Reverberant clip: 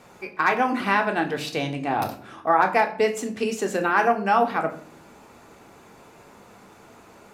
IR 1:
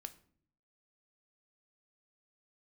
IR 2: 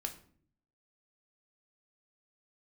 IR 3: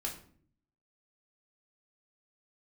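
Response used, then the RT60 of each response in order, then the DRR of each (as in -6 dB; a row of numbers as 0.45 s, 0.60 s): 2; no single decay rate, 0.55 s, 0.55 s; 8.5 dB, 3.5 dB, -2.5 dB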